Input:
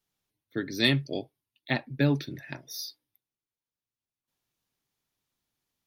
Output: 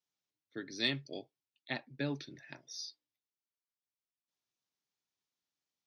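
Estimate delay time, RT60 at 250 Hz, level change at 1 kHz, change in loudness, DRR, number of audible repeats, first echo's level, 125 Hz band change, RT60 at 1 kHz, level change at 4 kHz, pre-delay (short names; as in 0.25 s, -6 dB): none, none, -10.0 dB, -10.0 dB, none, none, none, -15.5 dB, none, -7.5 dB, none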